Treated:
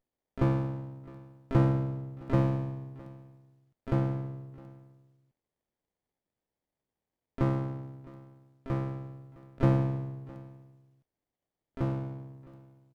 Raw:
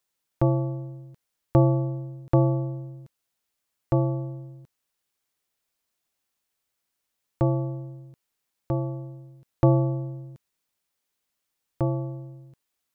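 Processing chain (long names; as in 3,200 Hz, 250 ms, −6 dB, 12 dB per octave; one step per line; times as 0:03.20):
pitch-shifted copies added −3 semitones −17 dB, +12 semitones −12 dB
single-tap delay 661 ms −20.5 dB
windowed peak hold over 33 samples
level −4.5 dB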